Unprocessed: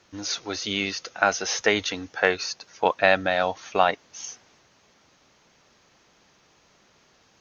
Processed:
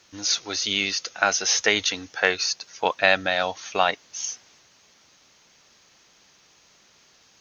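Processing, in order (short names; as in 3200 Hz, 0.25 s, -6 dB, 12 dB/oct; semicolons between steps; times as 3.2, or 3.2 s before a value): high shelf 2200 Hz +11 dB; gain -3 dB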